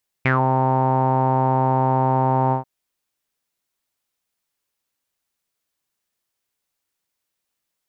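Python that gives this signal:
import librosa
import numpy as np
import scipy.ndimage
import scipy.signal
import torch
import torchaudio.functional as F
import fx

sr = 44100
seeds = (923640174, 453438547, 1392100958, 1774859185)

y = fx.sub_voice(sr, note=48, wave='saw', cutoff_hz=870.0, q=9.1, env_oct=1.5, env_s=0.15, attack_ms=5.5, decay_s=0.13, sustain_db=-2.5, release_s=0.12, note_s=2.27, slope=12)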